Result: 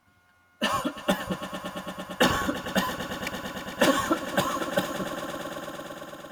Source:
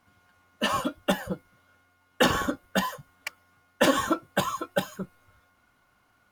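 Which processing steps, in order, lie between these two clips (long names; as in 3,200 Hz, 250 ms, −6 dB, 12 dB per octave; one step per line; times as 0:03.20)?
notch filter 460 Hz, Q 12
echo that builds up and dies away 113 ms, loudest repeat 5, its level −15 dB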